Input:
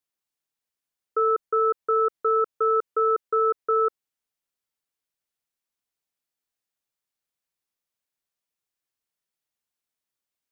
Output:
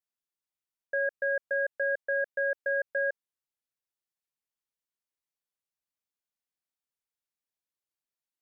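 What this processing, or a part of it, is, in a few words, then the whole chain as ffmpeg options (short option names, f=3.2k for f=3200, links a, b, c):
nightcore: -af "asetrate=55125,aresample=44100,volume=-7dB"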